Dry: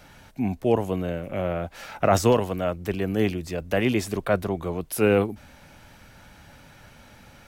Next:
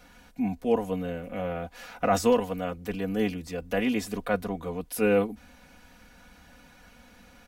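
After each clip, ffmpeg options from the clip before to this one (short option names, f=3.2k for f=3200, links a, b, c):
-af "aecho=1:1:4.1:0.83,volume=-6dB"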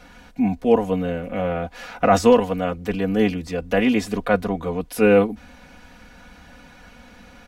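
-af "highshelf=f=8.6k:g=-12,volume=8dB"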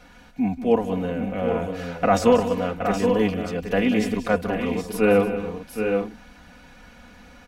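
-af "aecho=1:1:185|304|771|817:0.266|0.15|0.447|0.282,volume=-3dB"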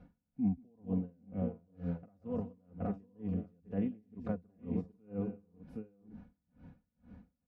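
-af "acompressor=threshold=-27dB:ratio=2.5,bandpass=f=130:t=q:w=1.3:csg=0,aeval=exprs='val(0)*pow(10,-35*(0.5-0.5*cos(2*PI*2.1*n/s))/20)':c=same,volume=4dB"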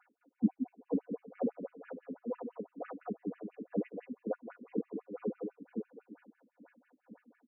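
-af "aecho=1:1:210:0.473,afftfilt=real='re*between(b*sr/1024,290*pow(2200/290,0.5+0.5*sin(2*PI*6*pts/sr))/1.41,290*pow(2200/290,0.5+0.5*sin(2*PI*6*pts/sr))*1.41)':imag='im*between(b*sr/1024,290*pow(2200/290,0.5+0.5*sin(2*PI*6*pts/sr))/1.41,290*pow(2200/290,0.5+0.5*sin(2*PI*6*pts/sr))*1.41)':win_size=1024:overlap=0.75,volume=10dB"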